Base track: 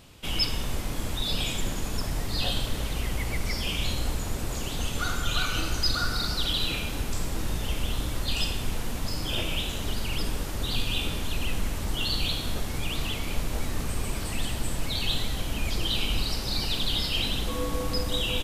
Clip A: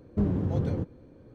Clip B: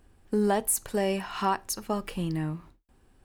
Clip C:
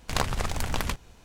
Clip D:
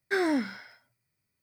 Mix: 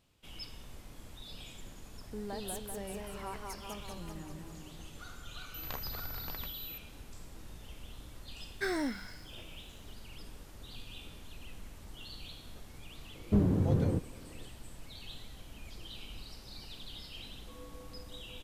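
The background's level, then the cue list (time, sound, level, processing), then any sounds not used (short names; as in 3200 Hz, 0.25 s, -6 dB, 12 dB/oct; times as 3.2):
base track -19.5 dB
1.8 add B -17 dB + warbling echo 0.195 s, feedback 63%, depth 118 cents, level -3 dB
5.54 add C -16 dB + pulse-width modulation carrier 12000 Hz
8.5 add D -7.5 dB + high shelf 3800 Hz +7.5 dB
13.15 add A -0.5 dB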